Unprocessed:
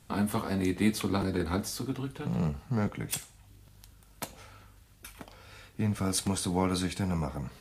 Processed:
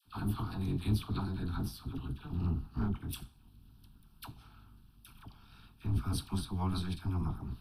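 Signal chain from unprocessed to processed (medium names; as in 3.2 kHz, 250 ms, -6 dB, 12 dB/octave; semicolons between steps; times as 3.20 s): octave divider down 1 oct, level +3 dB; AM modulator 180 Hz, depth 65%; static phaser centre 2 kHz, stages 6; phase dispersion lows, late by 58 ms, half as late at 1 kHz; trim -3 dB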